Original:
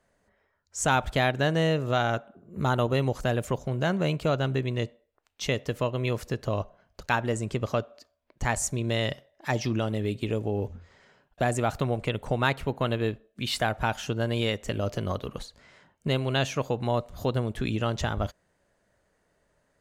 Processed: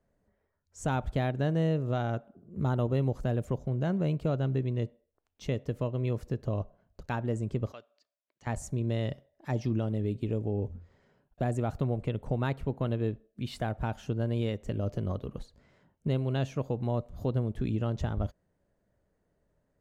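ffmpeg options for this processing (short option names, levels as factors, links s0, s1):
-filter_complex "[0:a]asettb=1/sr,asplit=3[s0][s1][s2];[s0]atrim=end=7.724[s3];[s1]atrim=start=7.72:end=8.47,asetpts=PTS-STARTPTS,afade=t=in:d=0.004:c=qsin,afade=t=out:st=0.746:d=0.004:c=qsin,bandpass=f=3400:t=q:w=0.89[s4];[s2]atrim=start=8.466[s5];[s3][s4]acrossfade=d=0.004:c1=hsin:c2=qsin[s6];[s6][s5]acrossfade=d=0.004:c1=qsin:c2=hsin,tiltshelf=f=690:g=7.5,volume=0.422"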